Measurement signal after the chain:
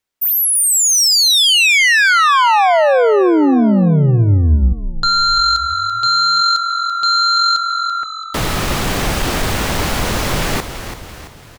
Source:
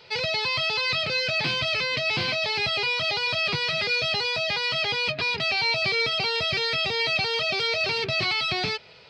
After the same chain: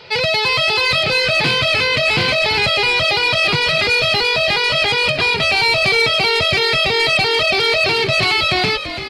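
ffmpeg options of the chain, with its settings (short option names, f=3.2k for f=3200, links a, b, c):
-filter_complex "[0:a]highshelf=f=6.2k:g=-8,aeval=exprs='0.266*sin(PI/2*2*val(0)/0.266)':c=same,asplit=6[a][b][c][d][e][f];[b]adelay=335,afreqshift=-45,volume=-10dB[g];[c]adelay=670,afreqshift=-90,volume=-16.2dB[h];[d]adelay=1005,afreqshift=-135,volume=-22.4dB[i];[e]adelay=1340,afreqshift=-180,volume=-28.6dB[j];[f]adelay=1675,afreqshift=-225,volume=-34.8dB[k];[a][g][h][i][j][k]amix=inputs=6:normalize=0,volume=1.5dB"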